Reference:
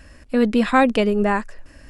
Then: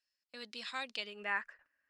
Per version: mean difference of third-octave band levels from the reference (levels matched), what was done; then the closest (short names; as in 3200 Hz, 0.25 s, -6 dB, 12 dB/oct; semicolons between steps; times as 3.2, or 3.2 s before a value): 7.5 dB: gate -34 dBFS, range -21 dB; band-pass sweep 4700 Hz -> 1600 Hz, 0.92–1.48; gain -4.5 dB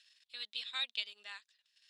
11.5 dB: transient shaper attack +1 dB, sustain -11 dB; ladder band-pass 3900 Hz, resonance 75%; gain +2 dB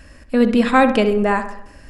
2.0 dB: on a send: darkening echo 66 ms, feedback 56%, low-pass 2600 Hz, level -9.5 dB; on the sum: gain +2 dB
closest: third